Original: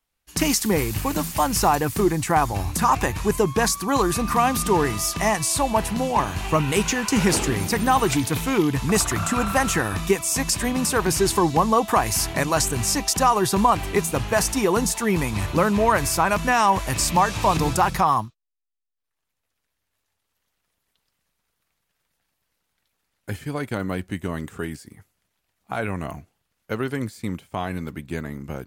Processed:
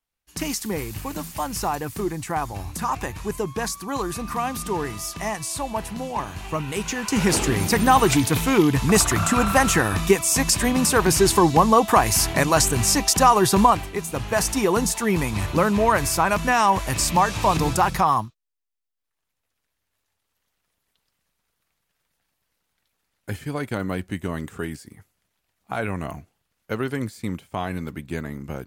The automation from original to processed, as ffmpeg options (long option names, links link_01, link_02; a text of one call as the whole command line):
ffmpeg -i in.wav -af "volume=11dB,afade=type=in:start_time=6.79:duration=0.95:silence=0.334965,afade=type=out:start_time=13.63:duration=0.28:silence=0.281838,afade=type=in:start_time=13.91:duration=0.59:silence=0.398107" out.wav